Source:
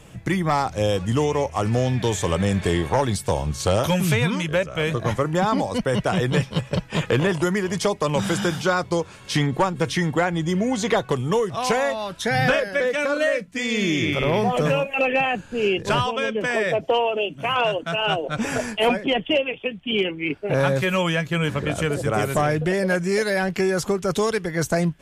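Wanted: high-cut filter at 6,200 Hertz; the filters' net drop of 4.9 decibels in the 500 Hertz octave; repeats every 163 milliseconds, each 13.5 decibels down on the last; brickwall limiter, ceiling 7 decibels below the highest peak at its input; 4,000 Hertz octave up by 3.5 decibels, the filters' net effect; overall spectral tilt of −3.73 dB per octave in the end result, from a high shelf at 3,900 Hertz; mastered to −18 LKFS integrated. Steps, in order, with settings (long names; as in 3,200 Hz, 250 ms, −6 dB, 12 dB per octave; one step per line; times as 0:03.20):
low-pass filter 6,200 Hz
parametric band 500 Hz −6 dB
high-shelf EQ 3,900 Hz −5.5 dB
parametric band 4,000 Hz +9 dB
brickwall limiter −16.5 dBFS
repeating echo 163 ms, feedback 21%, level −13.5 dB
level +8 dB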